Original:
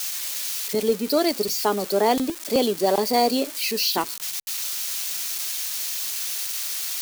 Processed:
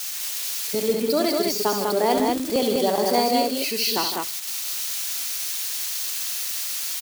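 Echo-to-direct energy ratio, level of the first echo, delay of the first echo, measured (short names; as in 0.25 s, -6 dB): -1.0 dB, -7.5 dB, 70 ms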